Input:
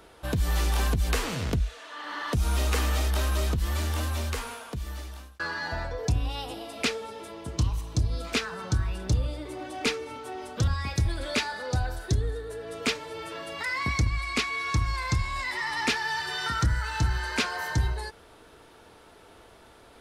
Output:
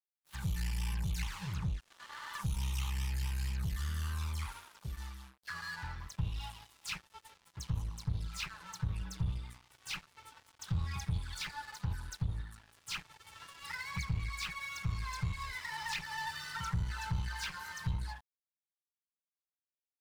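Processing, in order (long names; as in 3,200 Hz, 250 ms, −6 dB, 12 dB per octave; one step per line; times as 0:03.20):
high-pass filter 120 Hz 6 dB per octave
low-shelf EQ 310 Hz +7 dB
all-pass dispersion lows, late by 105 ms, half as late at 2,900 Hz
in parallel at 0 dB: downward compressor 12 to 1, threshold −31 dBFS, peak gain reduction 14.5 dB
on the sum: flanger swept by the level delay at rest 9.6 ms, full sweep at −18 dBFS
asymmetric clip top −25.5 dBFS
brick-wall band-stop 200–790 Hz
dead-zone distortion −40 dBFS
level −8.5 dB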